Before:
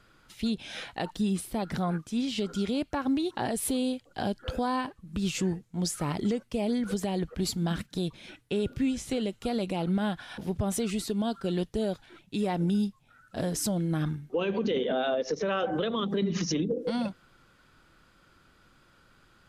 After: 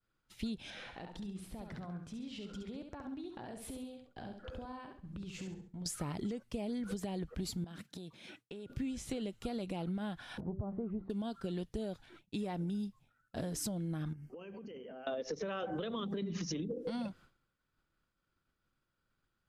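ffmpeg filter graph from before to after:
ffmpeg -i in.wav -filter_complex "[0:a]asettb=1/sr,asplit=3[link_01][link_02][link_03];[link_01]atrim=end=0.704[link_04];[link_02]atrim=start=0.7:end=5.86,asetpts=PTS-STARTPTS,afade=type=in:duration=0.004:curve=qsin,afade=type=out:start_time=5.156:duration=0.004:curve=qsin,aemphasis=mode=reproduction:type=50kf,acompressor=threshold=-40dB:ratio=5:attack=3.2:release=140:knee=1:detection=peak,aecho=1:1:68|136|204|272:0.501|0.185|0.0686|0.0254,atrim=end_sample=227556[link_05];[link_03]atrim=start=5.856[link_06];[link_04][link_05]acrossfade=duration=0.004:curve1=hsin:curve2=qsin[link_07];[link_07][link_06]acrossfade=duration=0.004:curve1=qsin:curve2=hsin,asettb=1/sr,asplit=3[link_08][link_09][link_10];[link_08]atrim=end=7.644[link_11];[link_09]atrim=start=7.64:end=8.7,asetpts=PTS-STARTPTS,afade=type=in:duration=0.004:curve=qsin,afade=type=out:start_time=1.056:duration=0.004:curve=qsin,highpass=160,acompressor=threshold=-38dB:ratio=16:attack=3.2:release=140:knee=1:detection=peak[link_12];[link_10]atrim=start=8.696[link_13];[link_11][link_12]acrossfade=duration=0.004:curve1=hsin:curve2=qsin[link_14];[link_14][link_13]acrossfade=duration=0.004:curve1=qsin:curve2=hsin,asettb=1/sr,asplit=3[link_15][link_16][link_17];[link_15]atrim=end=10.404[link_18];[link_16]atrim=start=10.4:end=11.1,asetpts=PTS-STARTPTS,afade=type=in:duration=0.004:curve=qsin,afade=type=out:start_time=0.696:duration=0.004:curve=qsin,lowpass=frequency=1100:width=0.5412,lowpass=frequency=1100:width=1.3066,bandreject=frequency=192.7:width_type=h:width=4,bandreject=frequency=385.4:width_type=h:width=4,bandreject=frequency=578.1:width_type=h:width=4[link_19];[link_17]atrim=start=11.096[link_20];[link_18][link_19]acrossfade=duration=0.004:curve1=hsin:curve2=qsin[link_21];[link_21][link_20]acrossfade=duration=0.004:curve1=qsin:curve2=hsin,asettb=1/sr,asplit=3[link_22][link_23][link_24];[link_22]atrim=end=14.134[link_25];[link_23]atrim=start=14.13:end=15.07,asetpts=PTS-STARTPTS,afade=type=in:duration=0.004:curve=qsin,afade=type=out:start_time=0.936:duration=0.004:curve=qsin,acompressor=threshold=-41dB:ratio=10:attack=3.2:release=140:knee=1:detection=peak,asuperstop=centerf=3700:order=12:qfactor=3.2[link_26];[link_24]atrim=start=15.066[link_27];[link_25][link_26]acrossfade=duration=0.004:curve1=hsin:curve2=qsin[link_28];[link_28][link_27]acrossfade=duration=0.004:curve1=qsin:curve2=hsin,agate=range=-33dB:threshold=-48dB:ratio=3:detection=peak,lowshelf=frequency=170:gain=4.5,acompressor=threshold=-30dB:ratio=6,volume=-5dB" out.wav

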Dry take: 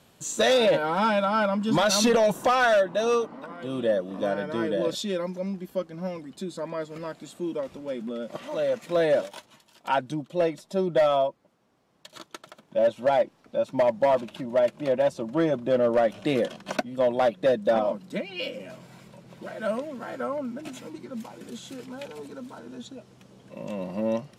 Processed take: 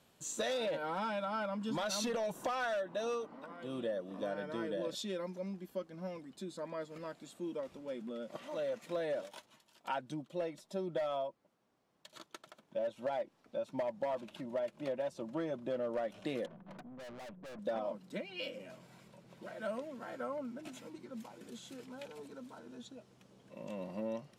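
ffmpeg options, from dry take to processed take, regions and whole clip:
ffmpeg -i in.wav -filter_complex "[0:a]asettb=1/sr,asplit=3[link_01][link_02][link_03];[link_01]atrim=end=16.464[link_04];[link_02]atrim=start=16.46:end=17.59,asetpts=PTS-STARTPTS,afade=type=in:duration=0.004:curve=qsin,afade=type=out:start_time=1.126:duration=0.004:curve=qsin,lowpass=1100,equalizer=frequency=170:width_type=o:width=0.4:gain=12,aeval=exprs='(tanh(79.4*val(0)+0.25)-tanh(0.25))/79.4':channel_layout=same[link_05];[link_03]atrim=start=17.586[link_06];[link_04][link_05]acrossfade=duration=0.004:curve1=hsin:curve2=qsin[link_07];[link_07][link_06]acrossfade=duration=0.004:curve1=qsin:curve2=hsin,acompressor=threshold=-24dB:ratio=6,equalizer=frequency=86:width_type=o:width=2.4:gain=-3,volume=-9dB" out.wav

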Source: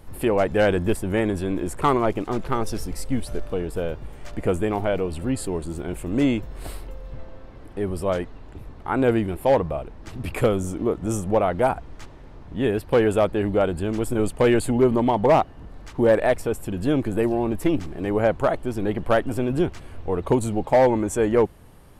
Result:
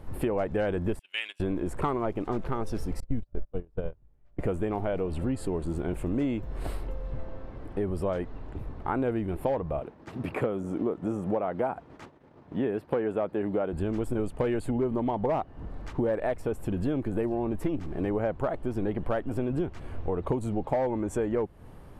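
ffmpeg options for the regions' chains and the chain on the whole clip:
ffmpeg -i in.wav -filter_complex "[0:a]asettb=1/sr,asplit=3[link_01][link_02][link_03];[link_01]atrim=end=0.994[link_04];[link_02]atrim=start=0.99:end=1.4,asetpts=PTS-STARTPTS,afade=type=in:duration=0.004:curve=qsin,afade=type=out:start_time=0.406:duration=0.004:curve=qsin,highpass=frequency=2800:width_type=q:width=5.8,agate=range=-19dB:threshold=-38dB:ratio=16:release=100:detection=peak[link_05];[link_03]atrim=start=1.396[link_06];[link_04][link_05]acrossfade=duration=0.004:curve1=hsin:curve2=qsin[link_07];[link_07][link_06]acrossfade=duration=0.004:curve1=qsin:curve2=hsin,asettb=1/sr,asplit=3[link_08][link_09][link_10];[link_08]atrim=end=3.004[link_11];[link_09]atrim=start=3:end=4.39,asetpts=PTS-STARTPTS,afade=type=in:duration=0.004:curve=qsin,afade=type=out:start_time=1.386:duration=0.004:curve=qsin,lowpass=4900,agate=range=-36dB:threshold=-24dB:ratio=16:release=100:detection=peak,lowshelf=frequency=210:gain=11.5[link_12];[link_10]atrim=start=4.386[link_13];[link_11][link_12]acrossfade=duration=0.004:curve1=hsin:curve2=qsin[link_14];[link_14][link_13]acrossfade=duration=0.004:curve1=qsin:curve2=hsin,asettb=1/sr,asplit=3[link_15][link_16][link_17];[link_15]atrim=end=9.804[link_18];[link_16]atrim=start=9.8:end=13.73,asetpts=PTS-STARTPTS,afade=type=in:duration=0.004:curve=qsin,afade=type=out:start_time=3.926:duration=0.004:curve=qsin,agate=range=-33dB:threshold=-36dB:ratio=3:release=100:detection=peak,highpass=160,acrossover=split=2600[link_19][link_20];[link_20]acompressor=threshold=-46dB:ratio=4:attack=1:release=60[link_21];[link_19][link_21]amix=inputs=2:normalize=0[link_22];[link_17]atrim=start=13.726[link_23];[link_18][link_22]acrossfade=duration=0.004:curve1=hsin:curve2=qsin[link_24];[link_24][link_23]acrossfade=duration=0.004:curve1=qsin:curve2=hsin,highshelf=frequency=2800:gain=-11.5,acompressor=threshold=-28dB:ratio=5,volume=2dB" out.wav

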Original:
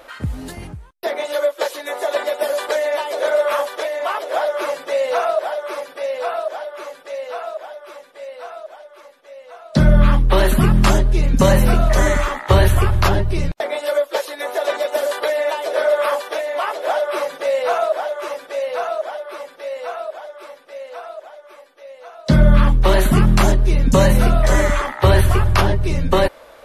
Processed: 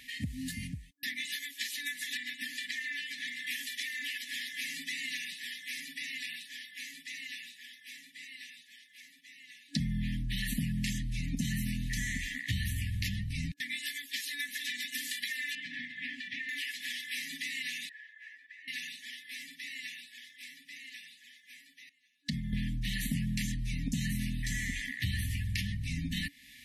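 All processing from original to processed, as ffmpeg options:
ffmpeg -i in.wav -filter_complex "[0:a]asettb=1/sr,asplit=3[link_01][link_02][link_03];[link_01]atrim=end=2.174[link_04];[link_02]atrim=start=2.17:end=3.47,asetpts=PTS-STARTPTS,afade=type=in:duration=0.004:curve=qsin,afade=type=out:start_time=1.296:duration=0.004:curve=qsin,lowpass=frequency=2500:poles=1,lowshelf=frequency=170:gain=-5[link_05];[link_03]atrim=start=3.466[link_06];[link_04][link_05]acrossfade=duration=0.004:curve1=hsin:curve2=qsin[link_07];[link_07][link_06]acrossfade=duration=0.004:curve1=qsin:curve2=hsin,asettb=1/sr,asplit=3[link_08][link_09][link_10];[link_08]atrim=end=15.554[link_11];[link_09]atrim=start=15.55:end=16.49,asetpts=PTS-STARTPTS,afade=type=in:duration=0.004:curve=qsin,afade=type=out:start_time=0.936:duration=0.004:curve=qsin,lowpass=2400,lowshelf=frequency=400:gain=10.5,acompressor=threshold=-17dB:ratio=3:attack=3.2:release=140:knee=1:detection=peak[link_12];[link_10]atrim=start=16.486[link_13];[link_11][link_12]acrossfade=duration=0.004:curve1=hsin:curve2=qsin[link_14];[link_14][link_13]acrossfade=duration=0.004:curve1=qsin:curve2=hsin,asettb=1/sr,asplit=3[link_15][link_16][link_17];[link_15]atrim=end=17.894[link_18];[link_16]atrim=start=17.89:end=18.68,asetpts=PTS-STARTPTS,afade=type=in:duration=0.004:curve=qsin,afade=type=out:start_time=0.786:duration=0.004:curve=qsin,acontrast=69,bandpass=frequency=1600:width_type=q:width=17[link_19];[link_17]atrim=start=18.676[link_20];[link_18][link_19]acrossfade=duration=0.004:curve1=hsin:curve2=qsin[link_21];[link_21][link_20]acrossfade=duration=0.004:curve1=qsin:curve2=hsin,asettb=1/sr,asplit=3[link_22][link_23][link_24];[link_22]atrim=end=21.894[link_25];[link_23]atrim=start=21.89:end=22.53,asetpts=PTS-STARTPTS,afade=type=in:duration=0.004:curve=qsin,afade=type=out:start_time=0.636:duration=0.004:curve=qsin,acompressor=threshold=-18dB:ratio=5:attack=3.2:release=140:knee=1:detection=peak,agate=range=-18dB:threshold=-29dB:ratio=16:release=100:detection=peak[link_26];[link_24]atrim=start=22.526[link_27];[link_25][link_26]acrossfade=duration=0.004:curve1=hsin:curve2=qsin[link_28];[link_28][link_27]acrossfade=duration=0.004:curve1=qsin:curve2=hsin,afftfilt=real='re*(1-between(b*sr/4096,280,1700))':imag='im*(1-between(b*sr/4096,280,1700))':win_size=4096:overlap=0.75,highpass=frequency=160:poles=1,acompressor=threshold=-35dB:ratio=3" out.wav

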